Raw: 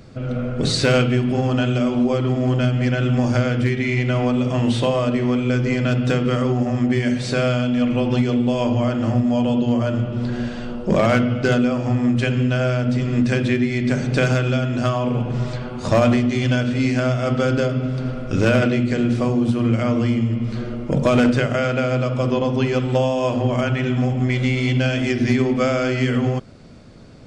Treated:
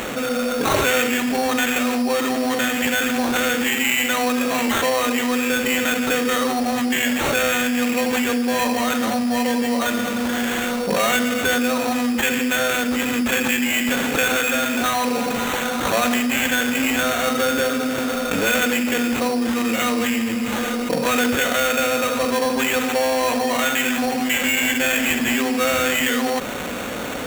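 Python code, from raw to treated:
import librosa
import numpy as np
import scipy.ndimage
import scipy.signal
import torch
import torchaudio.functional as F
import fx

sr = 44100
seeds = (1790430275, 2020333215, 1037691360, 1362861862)

y = fx.highpass(x, sr, hz=1400.0, slope=6)
y = y + 0.99 * np.pad(y, (int(4.1 * sr / 1000.0), 0))[:len(y)]
y = fx.sample_hold(y, sr, seeds[0], rate_hz=5000.0, jitter_pct=0)
y = fx.env_flatten(y, sr, amount_pct=70)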